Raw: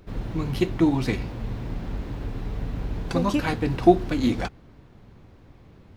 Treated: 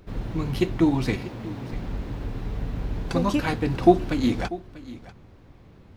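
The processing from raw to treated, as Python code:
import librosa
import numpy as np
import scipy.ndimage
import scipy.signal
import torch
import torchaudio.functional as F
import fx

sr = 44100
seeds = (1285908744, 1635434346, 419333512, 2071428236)

p1 = fx.highpass(x, sr, hz=120.0, slope=12, at=(1.16, 1.73))
y = p1 + fx.echo_single(p1, sr, ms=642, db=-17.5, dry=0)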